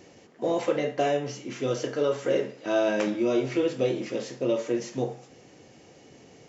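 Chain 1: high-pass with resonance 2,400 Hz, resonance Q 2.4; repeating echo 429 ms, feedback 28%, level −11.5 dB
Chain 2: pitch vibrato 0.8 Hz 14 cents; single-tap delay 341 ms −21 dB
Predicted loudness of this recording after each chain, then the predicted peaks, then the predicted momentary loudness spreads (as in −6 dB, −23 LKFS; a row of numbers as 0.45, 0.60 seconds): −35.0, −27.5 LKFS; −16.5, −12.0 dBFS; 21, 7 LU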